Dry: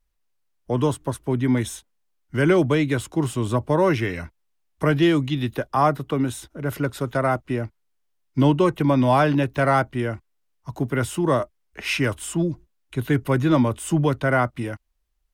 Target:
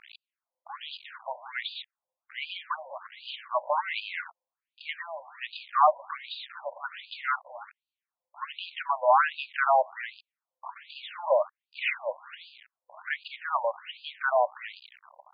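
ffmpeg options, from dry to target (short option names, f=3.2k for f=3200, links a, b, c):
-af "aeval=exprs='val(0)+0.5*0.0335*sgn(val(0))':c=same,afftfilt=real='re*between(b*sr/1024,720*pow(3500/720,0.5+0.5*sin(2*PI*1.3*pts/sr))/1.41,720*pow(3500/720,0.5+0.5*sin(2*PI*1.3*pts/sr))*1.41)':imag='im*between(b*sr/1024,720*pow(3500/720,0.5+0.5*sin(2*PI*1.3*pts/sr))/1.41,720*pow(3500/720,0.5+0.5*sin(2*PI*1.3*pts/sr))*1.41)':win_size=1024:overlap=0.75"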